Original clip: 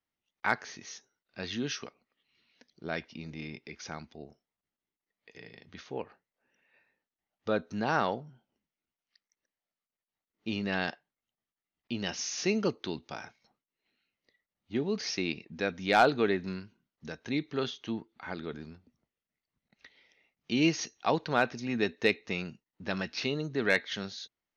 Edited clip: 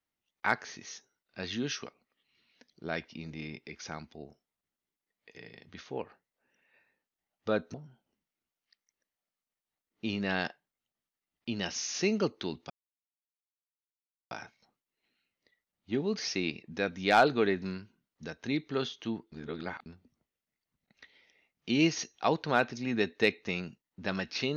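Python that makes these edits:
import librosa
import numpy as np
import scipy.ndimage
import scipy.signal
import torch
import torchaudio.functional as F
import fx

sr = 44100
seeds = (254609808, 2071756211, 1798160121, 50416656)

y = fx.edit(x, sr, fx.cut(start_s=7.74, length_s=0.43),
    fx.insert_silence(at_s=13.13, length_s=1.61),
    fx.reverse_span(start_s=18.14, length_s=0.54), tone=tone)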